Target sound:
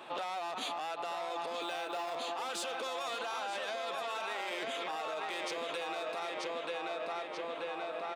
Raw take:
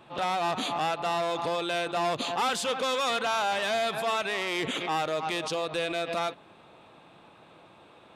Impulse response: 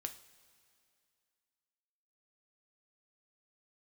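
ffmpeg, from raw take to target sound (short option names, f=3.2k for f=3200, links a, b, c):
-filter_complex "[0:a]asplit=2[a][b];[b]asoftclip=type=hard:threshold=-31dB,volume=-6dB[c];[a][c]amix=inputs=2:normalize=0,highpass=380,asettb=1/sr,asplit=3[d][e][f];[d]atrim=end=1.614[g];[e]atrim=start=1.61:end=2.19,asetpts=PTS-STARTPTS,afade=t=in:d=0.004:c=qsin,afade=t=out:st=0.576:d=0.004:c=qsin,acrusher=bits=7:mode=log:mix=0:aa=0.000001[h];[f]atrim=start=2.186[i];[g][h]acrossfade=d=0.004:c1=hsin:c2=qsin[j];[j][i]acrossfade=d=0.004:c1=qsin:c2=hsin,asettb=1/sr,asplit=3[k][l][m];[k]atrim=end=3.404[n];[l]atrim=start=3.4:end=4.1,asetpts=PTS-STARTPTS,afade=t=in:d=0.004:c=qsin,afade=t=out:st=0.696:d=0.004:c=qsin,highshelf=f=12k:g=-9[o];[m]atrim=start=4.096[p];[n][o]acrossfade=d=0.004:c1=hsin:c2=qsin[q];[q][p]acrossfade=d=0.004:c1=qsin:c2=hsin,asplit=2[r][s];[s]adelay=933,lowpass=f=3.4k:p=1,volume=-3.5dB,asplit=2[t][u];[u]adelay=933,lowpass=f=3.4k:p=1,volume=0.53,asplit=2[v][w];[w]adelay=933,lowpass=f=3.4k:p=1,volume=0.53,asplit=2[x][y];[y]adelay=933,lowpass=f=3.4k:p=1,volume=0.53,asplit=2[z][aa];[aa]adelay=933,lowpass=f=3.4k:p=1,volume=0.53,asplit=2[ab][ac];[ac]adelay=933,lowpass=f=3.4k:p=1,volume=0.53,asplit=2[ad][ae];[ae]adelay=933,lowpass=f=3.4k:p=1,volume=0.53[af];[t][v][x][z][ab][ad][af]amix=inputs=7:normalize=0[ag];[r][ag]amix=inputs=2:normalize=0,alimiter=limit=-22dB:level=0:latency=1:release=40,acompressor=threshold=-38dB:ratio=6,volume=2.5dB"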